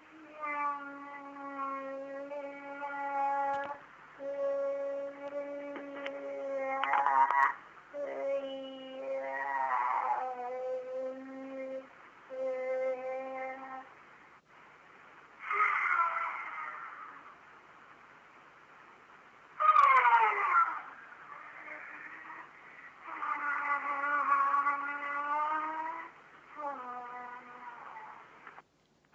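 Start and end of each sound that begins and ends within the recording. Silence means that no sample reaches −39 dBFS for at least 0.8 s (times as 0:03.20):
0:15.43–0:17.09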